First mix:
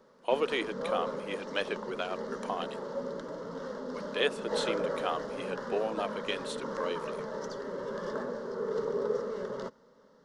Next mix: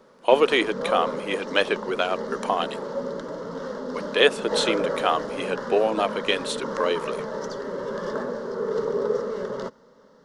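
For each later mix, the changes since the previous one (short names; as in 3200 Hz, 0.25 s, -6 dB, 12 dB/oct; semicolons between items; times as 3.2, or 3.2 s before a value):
speech +11.0 dB; background +6.5 dB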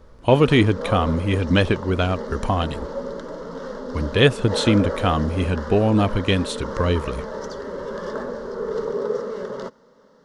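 speech: remove HPF 390 Hz 24 dB/oct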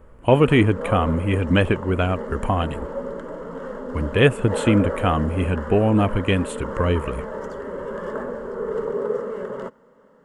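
master: add band shelf 4700 Hz -15.5 dB 1 oct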